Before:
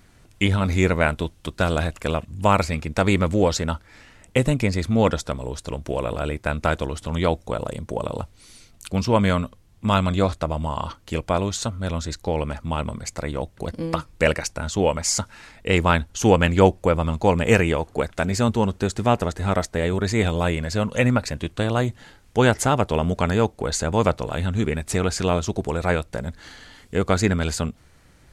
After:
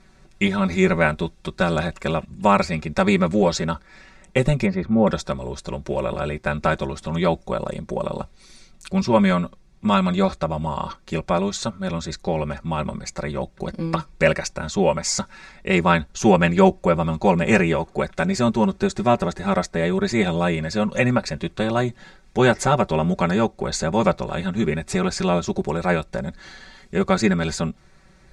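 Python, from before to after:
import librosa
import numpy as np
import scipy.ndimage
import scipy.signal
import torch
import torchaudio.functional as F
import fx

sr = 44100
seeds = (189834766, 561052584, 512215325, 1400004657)

y = fx.lowpass(x, sr, hz=fx.line((4.65, 2600.0), (5.06, 1000.0)), slope=12, at=(4.65, 5.06), fade=0.02)
y = scipy.signal.sosfilt(scipy.signal.butter(2, 6700.0, 'lowpass', fs=sr, output='sos'), y)
y = fx.notch(y, sr, hz=3000.0, q=8.3)
y = y + 0.91 * np.pad(y, (int(5.3 * sr / 1000.0), 0))[:len(y)]
y = y * 10.0 ** (-1.0 / 20.0)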